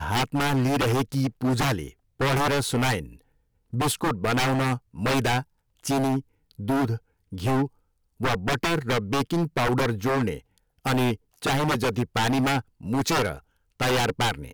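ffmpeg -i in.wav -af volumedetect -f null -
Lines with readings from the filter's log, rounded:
mean_volume: -25.6 dB
max_volume: -17.5 dB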